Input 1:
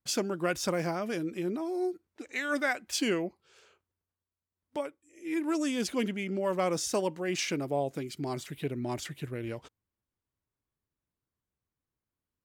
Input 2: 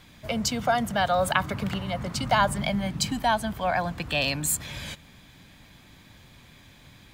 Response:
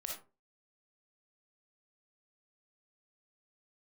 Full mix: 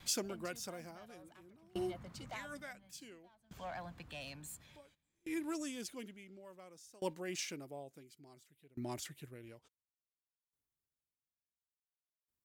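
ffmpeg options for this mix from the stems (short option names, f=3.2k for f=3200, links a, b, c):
-filter_complex "[0:a]highshelf=f=5.5k:g=10.5,volume=-6.5dB,asplit=2[a][b];[1:a]asoftclip=type=tanh:threshold=-20.5dB,volume=-5dB[c];[b]apad=whole_len=314582[d];[c][d]sidechaincompress=threshold=-43dB:ratio=12:attack=12:release=1480[e];[a][e]amix=inputs=2:normalize=0,aeval=exprs='val(0)*pow(10,-27*if(lt(mod(0.57*n/s,1),2*abs(0.57)/1000),1-mod(0.57*n/s,1)/(2*abs(0.57)/1000),(mod(0.57*n/s,1)-2*abs(0.57)/1000)/(1-2*abs(0.57)/1000))/20)':c=same"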